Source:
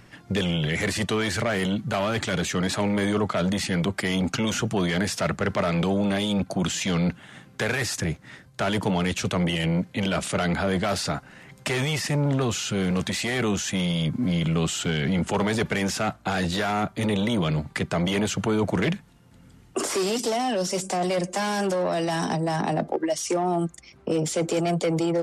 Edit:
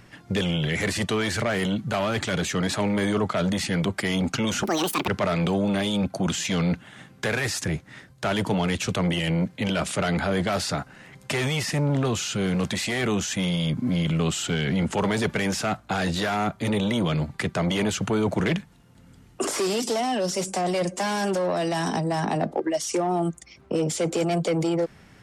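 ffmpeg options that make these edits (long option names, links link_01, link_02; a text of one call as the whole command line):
ffmpeg -i in.wav -filter_complex "[0:a]asplit=3[link_01][link_02][link_03];[link_01]atrim=end=4.634[link_04];[link_02]atrim=start=4.63:end=5.44,asetpts=PTS-STARTPTS,asetrate=79821,aresample=44100,atrim=end_sample=19735,asetpts=PTS-STARTPTS[link_05];[link_03]atrim=start=5.436[link_06];[link_04][link_05]acrossfade=duration=0.004:curve1=hsin:curve2=hsin[link_07];[link_07][link_06]acrossfade=duration=0.004:curve1=hsin:curve2=hsin" out.wav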